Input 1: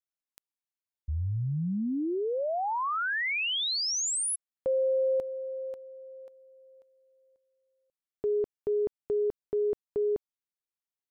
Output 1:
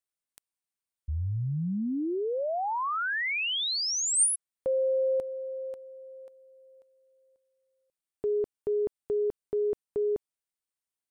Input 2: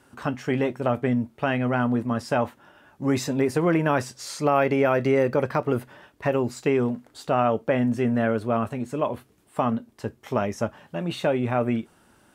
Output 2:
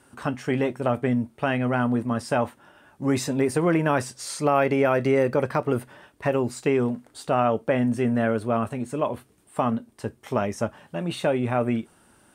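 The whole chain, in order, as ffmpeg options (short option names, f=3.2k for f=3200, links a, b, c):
-af "equalizer=f=8.9k:t=o:w=0.21:g=9.5"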